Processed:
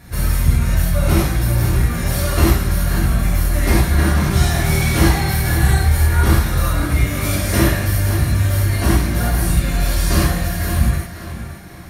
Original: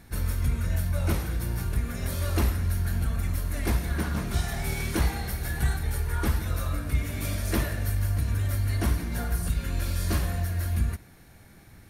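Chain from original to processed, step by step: on a send: tape echo 532 ms, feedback 43%, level -8 dB, low-pass 4.9 kHz; on the sum: gated-style reverb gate 130 ms flat, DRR -6.5 dB; trim +5 dB

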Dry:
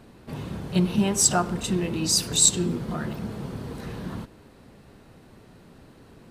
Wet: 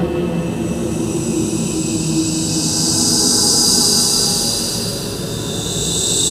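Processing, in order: peaking EQ 2.2 kHz -10 dB 0.55 oct; frequency-shifting echo 380 ms, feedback 51%, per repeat +57 Hz, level -10 dB; Paulstretch 12×, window 0.25 s, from 1.84 s; trim +8 dB

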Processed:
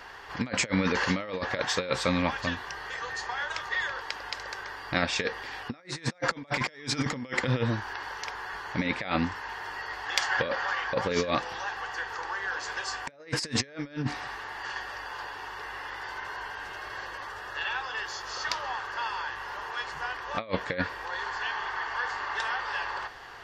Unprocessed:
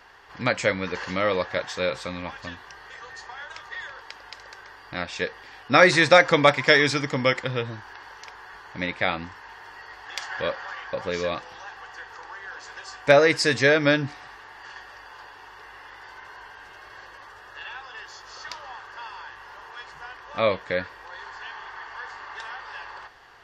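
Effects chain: dynamic bell 240 Hz, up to +6 dB, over -43 dBFS, Q 3.3; compressor with a negative ratio -29 dBFS, ratio -0.5

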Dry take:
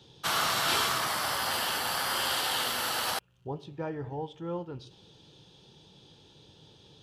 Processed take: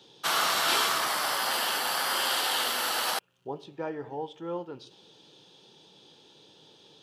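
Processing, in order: high-pass 260 Hz 12 dB/octave; trim +2 dB

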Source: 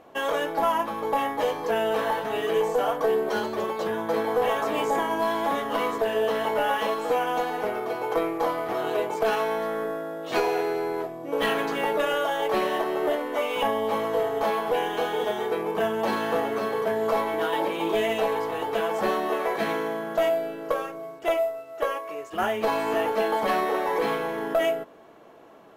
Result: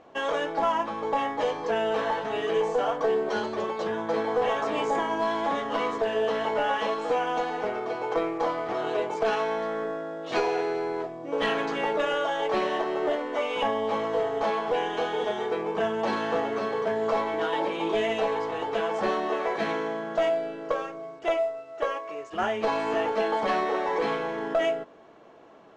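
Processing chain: low-pass 7 kHz 24 dB/octave; trim -1.5 dB

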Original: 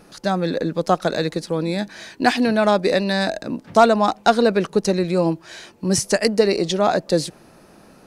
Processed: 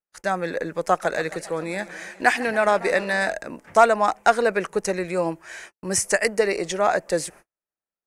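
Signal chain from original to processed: gate -40 dBFS, range -47 dB; graphic EQ 125/250/2000/4000/8000 Hz -9/-9/+8/-12/+6 dB; 0.87–3.33 s: modulated delay 139 ms, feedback 72%, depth 181 cents, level -18 dB; trim -1.5 dB

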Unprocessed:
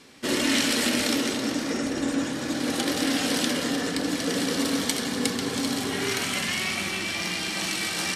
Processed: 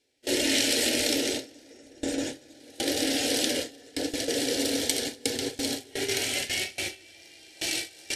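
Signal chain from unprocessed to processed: gate with hold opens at -16 dBFS; static phaser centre 470 Hz, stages 4; trim +1.5 dB

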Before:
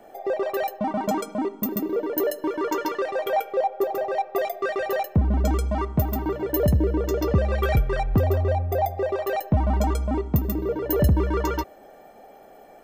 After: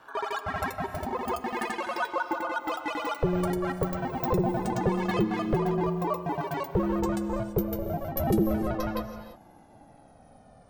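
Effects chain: gliding tape speed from 177% -> 63%; ring modulator 270 Hz; gated-style reverb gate 360 ms rising, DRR 10.5 dB; trim -3 dB

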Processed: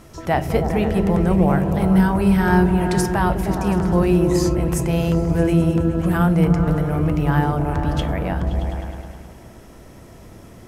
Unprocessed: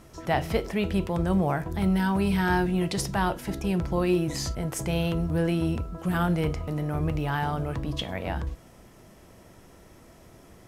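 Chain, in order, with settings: dynamic bell 3.7 kHz, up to -7 dB, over -49 dBFS, Q 1.1; delay with an opening low-pass 104 ms, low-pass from 200 Hz, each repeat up 1 oct, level 0 dB; trim +6 dB

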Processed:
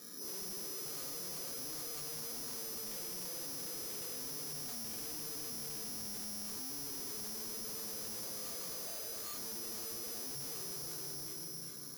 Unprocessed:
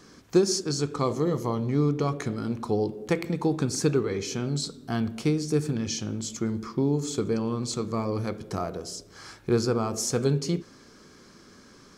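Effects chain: reverse spectral sustain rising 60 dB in 0.33 s; Doppler pass-by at 5.13 s, 17 m/s, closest 13 m; high-pass 210 Hz 12 dB/octave; low-pass that closes with the level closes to 1.9 kHz, closed at -25.5 dBFS; steep low-pass 10 kHz 96 dB/octave; bass shelf 290 Hz +6.5 dB; hum notches 60/120/180/240/300/360/420/480/540 Hz; peak limiter -24 dBFS, peak gain reduction 9.5 dB; repeats whose band climbs or falls 398 ms, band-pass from 540 Hz, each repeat 1.4 oct, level 0 dB; simulated room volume 2900 m³, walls mixed, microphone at 1.8 m; careless resampling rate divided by 8×, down filtered, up zero stuff; slew-rate limiter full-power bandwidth 67 Hz; trim +7 dB

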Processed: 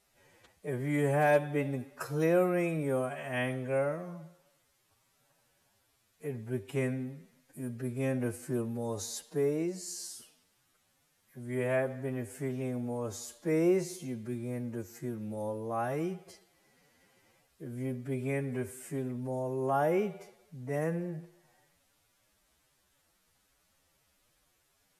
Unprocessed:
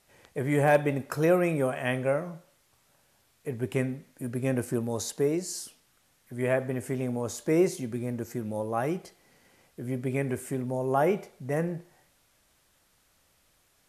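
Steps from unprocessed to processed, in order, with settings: time stretch by phase-locked vocoder 1.8×; trim -4.5 dB

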